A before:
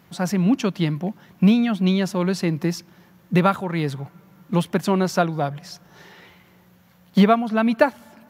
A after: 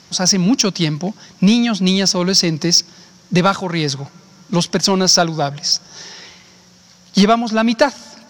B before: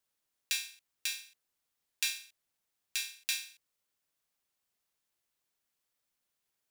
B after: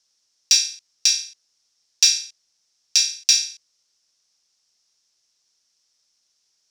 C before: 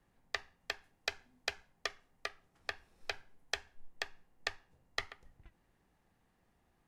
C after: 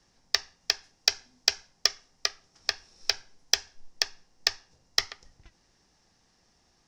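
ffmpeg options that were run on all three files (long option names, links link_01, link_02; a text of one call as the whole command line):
ffmpeg -i in.wav -af "lowpass=frequency=5500:width_type=q:width=5.3,bass=frequency=250:gain=-2,treble=frequency=4000:gain=9,acontrast=62,volume=-1dB" out.wav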